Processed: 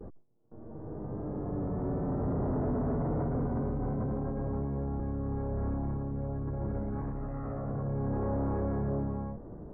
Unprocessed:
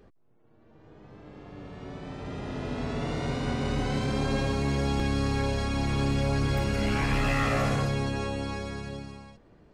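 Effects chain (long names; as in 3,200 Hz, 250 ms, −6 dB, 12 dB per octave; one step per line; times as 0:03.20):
noise gate with hold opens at −51 dBFS
compressor whose output falls as the input rises −32 dBFS, ratio −0.5
soft clipping −35 dBFS, distortion −7 dB
Gaussian smoothing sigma 8.4 samples
level +8 dB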